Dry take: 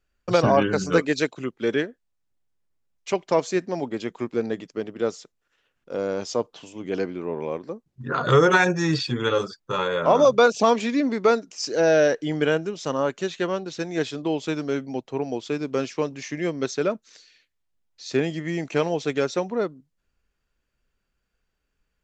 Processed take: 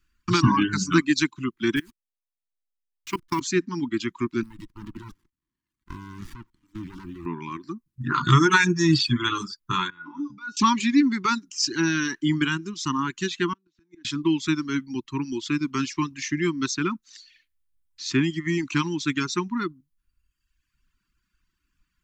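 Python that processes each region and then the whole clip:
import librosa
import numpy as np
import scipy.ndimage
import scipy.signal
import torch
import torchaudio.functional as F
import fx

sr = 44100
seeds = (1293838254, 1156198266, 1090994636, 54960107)

y = fx.chain(x, sr, fx.delta_hold(step_db=-40.0),
    fx.level_steps(step_db=21), at=(1.76, 3.41))
y = fx.chain(y, sr, fx.law_mismatch(coded='mu'),
    fx.level_steps(step_db=19),
    fx.running_max(window=33), at=(4.43, 7.26))
y = fx.chain(y, sr, fx.lowpass(hz=1900.0, slope=6),
    fx.over_compress(threshold_db=-20.0, ratio=-1.0),
    fx.comb_fb(f0_hz=290.0, decay_s=0.39, harmonics='odd', damping=0.0, mix_pct=90), at=(9.9, 10.57))
y = fx.chain(y, sr, fx.highpass(hz=200.0, slope=24),
    fx.tilt_eq(slope=-2.0),
    fx.gate_flip(shuts_db=-23.0, range_db=-31), at=(13.53, 14.05))
y = scipy.signal.sosfilt(scipy.signal.ellip(3, 1.0, 40, [340.0, 990.0], 'bandstop', fs=sr, output='sos'), y)
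y = fx.dereverb_blind(y, sr, rt60_s=1.1)
y = fx.dynamic_eq(y, sr, hz=1700.0, q=1.0, threshold_db=-34.0, ratio=4.0, max_db=-4)
y = y * 10.0 ** (6.0 / 20.0)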